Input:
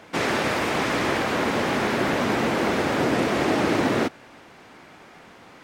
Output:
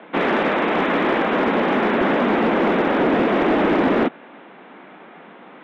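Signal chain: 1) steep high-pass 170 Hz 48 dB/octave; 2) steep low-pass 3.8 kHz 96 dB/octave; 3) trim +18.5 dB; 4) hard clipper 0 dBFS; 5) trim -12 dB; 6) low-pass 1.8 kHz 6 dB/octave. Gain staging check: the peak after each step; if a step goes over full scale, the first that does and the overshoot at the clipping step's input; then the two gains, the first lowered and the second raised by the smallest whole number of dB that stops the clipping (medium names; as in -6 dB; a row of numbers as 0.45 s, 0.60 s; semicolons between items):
-10.0 dBFS, -9.5 dBFS, +9.0 dBFS, 0.0 dBFS, -12.0 dBFS, -12.0 dBFS; step 3, 9.0 dB; step 3 +9.5 dB, step 5 -3 dB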